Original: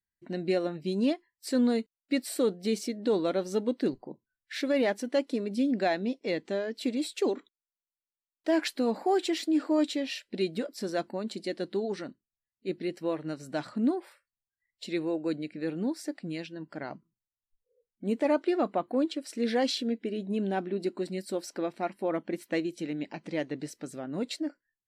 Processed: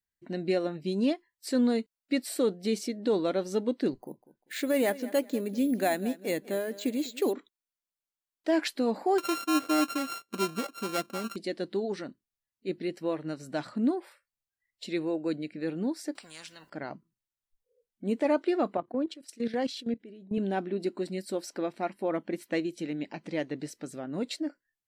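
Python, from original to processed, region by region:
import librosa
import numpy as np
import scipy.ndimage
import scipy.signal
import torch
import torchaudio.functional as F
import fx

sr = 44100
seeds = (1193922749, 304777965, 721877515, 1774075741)

y = fx.chain(x, sr, fx.echo_feedback(ms=197, feedback_pct=28, wet_db=-17.5),
    fx.resample_bad(factor=4, down='filtered', up='hold'), at=(4.0, 7.33))
y = fx.chain(y, sr, fx.sample_sort(block=32),
    fx.notch_comb(f0_hz=880.0), at=(9.18, 11.36))
y = fx.chain(y, sr, fx.low_shelf(hz=470.0, db=-8.5),
    fx.spectral_comp(ratio=4.0), at=(16.15, 16.7))
y = fx.chain(y, sr, fx.peak_eq(hz=65.0, db=8.5, octaves=2.1),
    fx.level_steps(step_db=14),
    fx.band_widen(depth_pct=70), at=(18.77, 20.38))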